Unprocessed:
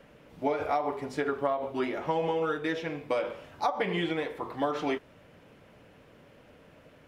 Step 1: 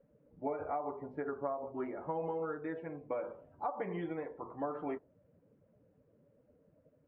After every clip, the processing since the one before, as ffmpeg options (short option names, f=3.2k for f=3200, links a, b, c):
-af "lowpass=1.4k,afftdn=nr=15:nf=-48,volume=-8dB"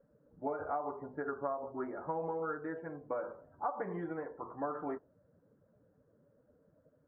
-af "highshelf=f=2k:t=q:w=3:g=-9,volume=-1dB"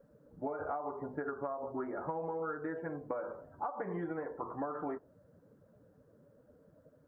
-af "acompressor=threshold=-40dB:ratio=6,volume=5.5dB"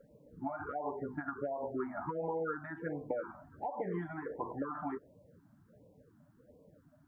-af "afftfilt=real='re*(1-between(b*sr/1024,410*pow(1600/410,0.5+0.5*sin(2*PI*1.4*pts/sr))/1.41,410*pow(1600/410,0.5+0.5*sin(2*PI*1.4*pts/sr))*1.41))':imag='im*(1-between(b*sr/1024,410*pow(1600/410,0.5+0.5*sin(2*PI*1.4*pts/sr))/1.41,410*pow(1600/410,0.5+0.5*sin(2*PI*1.4*pts/sr))*1.41))':win_size=1024:overlap=0.75,volume=2dB"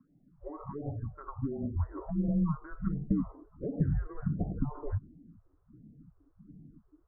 -af "highpass=f=410:t=q:w=0.5412,highpass=f=410:t=q:w=1.307,lowpass=f=2.2k:t=q:w=0.5176,lowpass=f=2.2k:t=q:w=0.7071,lowpass=f=2.2k:t=q:w=1.932,afreqshift=-300,asubboost=boost=9.5:cutoff=240,volume=-1.5dB"